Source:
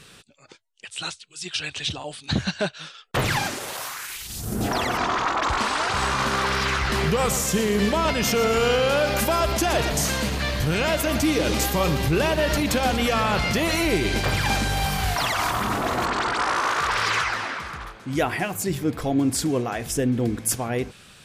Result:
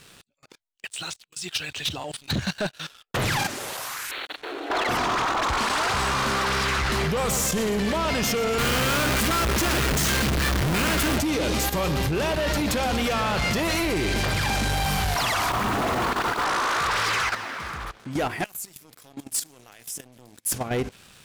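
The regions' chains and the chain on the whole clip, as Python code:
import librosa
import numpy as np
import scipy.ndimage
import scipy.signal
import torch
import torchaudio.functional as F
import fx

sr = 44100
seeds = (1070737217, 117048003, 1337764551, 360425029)

y = fx.chain(x, sr, fx.delta_hold(step_db=-29.5),
    fx.brickwall_bandpass(low_hz=270.0, high_hz=4500.0),
    fx.peak_eq(hz=1500.0, db=3.5, octaves=0.46), at=(4.11, 4.89))
y = fx.chain(y, sr, fx.band_shelf(hz=670.0, db=-12.0, octaves=1.3),
    fx.schmitt(flips_db=-31.5), at=(8.58, 11.18))
y = fx.chain(y, sr, fx.block_float(bits=3),
    fx.high_shelf(hz=4100.0, db=-10.5), at=(15.49, 16.45))
y = fx.chain(y, sr, fx.highpass(hz=94.0, slope=24),
    fx.pre_emphasis(coefficient=0.9),
    fx.transformer_sat(knee_hz=2700.0), at=(18.44, 20.52))
y = fx.level_steps(y, sr, step_db=13)
y = fx.leveller(y, sr, passes=3)
y = y * 10.0 ** (-5.5 / 20.0)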